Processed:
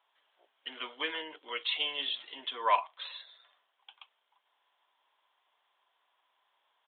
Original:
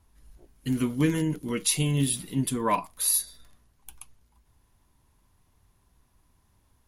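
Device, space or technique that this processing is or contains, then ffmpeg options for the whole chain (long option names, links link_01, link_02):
musical greeting card: -af "aresample=8000,aresample=44100,highpass=frequency=610:width=0.5412,highpass=frequency=610:width=1.3066,equalizer=frequency=3200:width_type=o:width=0.22:gain=9"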